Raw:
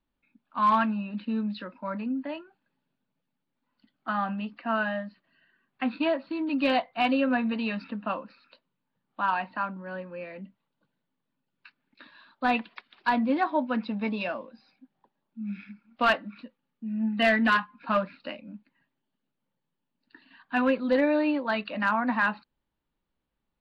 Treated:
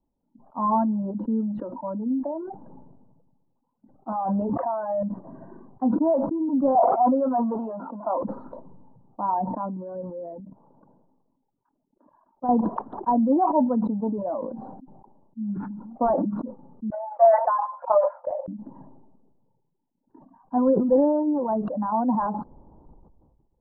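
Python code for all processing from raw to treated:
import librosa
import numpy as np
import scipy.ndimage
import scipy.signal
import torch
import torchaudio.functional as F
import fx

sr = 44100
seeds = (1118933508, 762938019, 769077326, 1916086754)

y = fx.chain(x, sr, fx.highpass(hz=45.0, slope=12),
    fx.peak_eq(hz=240.0, db=-14.5, octaves=1.3),
    fx.env_flatten(amount_pct=100), at=(4.12, 5.03))
y = fx.chain(y, sr, fx.zero_step(step_db=-33.5),
    fx.cabinet(low_hz=280.0, low_slope=24, high_hz=3500.0, hz=(310.0, 450.0, 670.0, 1400.0, 2000.0, 2900.0), db=(-7, -7, 3, 7, -10, 5)),
    fx.sustainer(db_per_s=96.0), at=(6.75, 8.23))
y = fx.chain(y, sr, fx.level_steps(step_db=14),
    fx.low_shelf(hz=210.0, db=-8.0), at=(10.4, 12.49))
y = fx.chain(y, sr, fx.brickwall_bandpass(low_hz=520.0, high_hz=2600.0),
    fx.transient(attack_db=9, sustain_db=-3), at=(16.9, 18.48))
y = fx.dereverb_blind(y, sr, rt60_s=1.5)
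y = scipy.signal.sosfilt(scipy.signal.ellip(4, 1.0, 60, 920.0, 'lowpass', fs=sr, output='sos'), y)
y = fx.sustainer(y, sr, db_per_s=34.0)
y = y * 10.0 ** (5.5 / 20.0)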